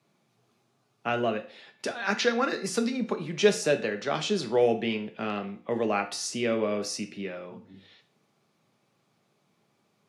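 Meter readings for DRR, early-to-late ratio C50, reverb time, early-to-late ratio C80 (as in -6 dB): 6.0 dB, 13.5 dB, 0.40 s, 18.0 dB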